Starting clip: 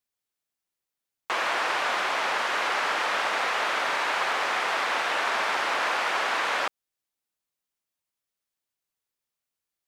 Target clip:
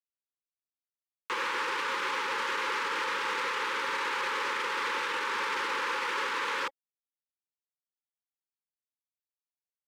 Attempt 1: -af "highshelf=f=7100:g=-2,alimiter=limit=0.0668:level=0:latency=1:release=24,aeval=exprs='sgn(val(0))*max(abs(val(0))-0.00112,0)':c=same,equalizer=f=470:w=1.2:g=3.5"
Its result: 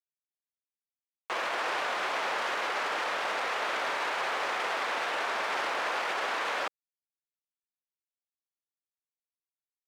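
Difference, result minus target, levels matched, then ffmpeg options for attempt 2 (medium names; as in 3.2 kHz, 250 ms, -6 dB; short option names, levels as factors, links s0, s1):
500 Hz band +3.0 dB
-af "asuperstop=centerf=680:order=20:qfactor=2.5,highshelf=f=7100:g=-2,alimiter=limit=0.0668:level=0:latency=1:release=24,aeval=exprs='sgn(val(0))*max(abs(val(0))-0.00112,0)':c=same,equalizer=f=470:w=1.2:g=3.5"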